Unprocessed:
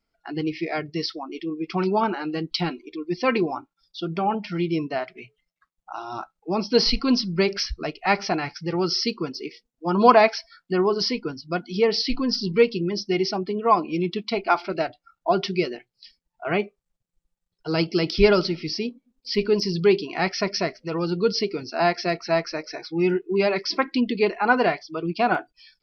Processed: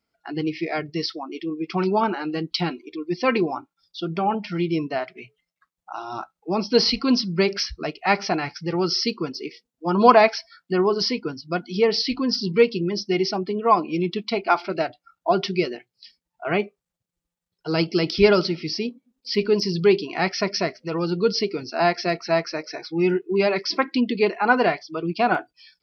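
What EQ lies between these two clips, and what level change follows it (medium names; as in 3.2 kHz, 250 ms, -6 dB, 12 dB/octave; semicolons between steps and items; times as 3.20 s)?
high-pass 76 Hz; +1.0 dB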